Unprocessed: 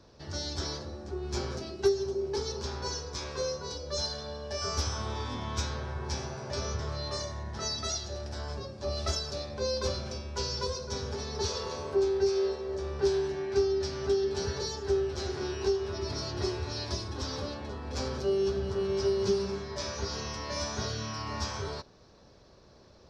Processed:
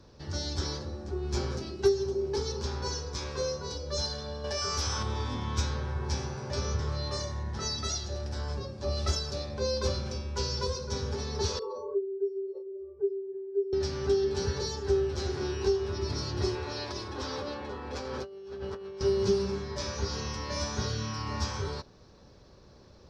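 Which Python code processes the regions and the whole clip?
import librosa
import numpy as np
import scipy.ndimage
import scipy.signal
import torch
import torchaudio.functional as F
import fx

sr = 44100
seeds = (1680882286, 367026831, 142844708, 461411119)

y = fx.chain(x, sr, fx.low_shelf(hz=470.0, db=-7.5),
    fx.env_flatten(amount_pct=70), at=(4.44, 5.03))
y = fx.chain(y, sr, fx.spec_expand(power=2.7),
    fx.highpass(hz=370.0, slope=12),
    fx.doubler(ms=32.0, db=-6), at=(11.59, 13.73))
y = fx.chain(y, sr, fx.bass_treble(bass_db=-12, treble_db=-8),
    fx.over_compress(threshold_db=-39.0, ratio=-1.0), at=(16.55, 19.01))
y = fx.low_shelf(y, sr, hz=250.0, db=4.5)
y = fx.notch(y, sr, hz=660.0, q=12.0)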